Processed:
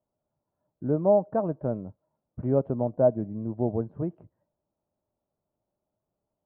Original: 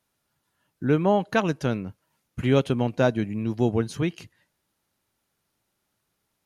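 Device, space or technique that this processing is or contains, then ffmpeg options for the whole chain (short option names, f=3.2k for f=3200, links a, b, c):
under water: -filter_complex "[0:a]lowpass=f=940:w=0.5412,lowpass=f=940:w=1.3066,equalizer=f=610:t=o:w=0.26:g=10,asettb=1/sr,asplit=3[a][b][c];[a]atrim=end=1.454[d];[b]atrim=start=1.45:end=2.92,asetpts=PTS-STARTPTS,afade=t=in:d=0.004:c=qsin,afade=t=out:st=1.466:d=0.004:c=qsin,highshelf=f=2.8k:g=6.5[e];[c]atrim=start=2.916[f];[d][e]acrossfade=d=0.004:c1=hsin:c2=qsin[g];[g][f]acrossfade=d=0.004:c1=qsin:c2=hsin,volume=-5dB"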